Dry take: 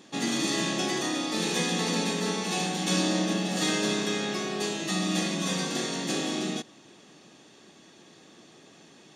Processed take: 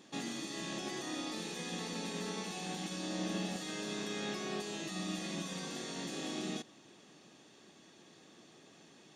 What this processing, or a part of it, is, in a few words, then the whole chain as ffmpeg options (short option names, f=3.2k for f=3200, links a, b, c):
de-esser from a sidechain: -filter_complex "[0:a]asplit=2[a][b];[b]highpass=f=4.6k:w=0.5412,highpass=f=4.6k:w=1.3066,apad=whole_len=403724[c];[a][c]sidechaincompress=threshold=-41dB:ratio=8:attack=1.7:release=21,volume=-6dB"